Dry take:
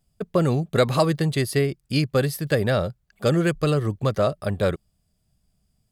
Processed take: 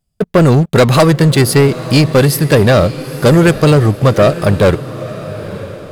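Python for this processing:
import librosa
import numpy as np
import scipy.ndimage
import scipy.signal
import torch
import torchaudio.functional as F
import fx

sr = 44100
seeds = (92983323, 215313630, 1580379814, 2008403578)

y = fx.leveller(x, sr, passes=3)
y = fx.echo_diffused(y, sr, ms=929, feedback_pct=41, wet_db=-14)
y = F.gain(torch.from_numpy(y), 4.0).numpy()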